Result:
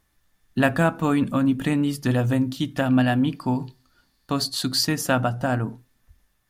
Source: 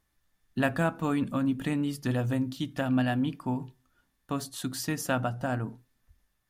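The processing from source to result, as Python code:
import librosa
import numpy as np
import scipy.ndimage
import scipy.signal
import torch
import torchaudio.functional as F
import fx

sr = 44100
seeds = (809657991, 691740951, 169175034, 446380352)

y = fx.peak_eq(x, sr, hz=4500.0, db=15.0, octaves=0.31, at=(3.36, 4.85))
y = y * 10.0 ** (7.0 / 20.0)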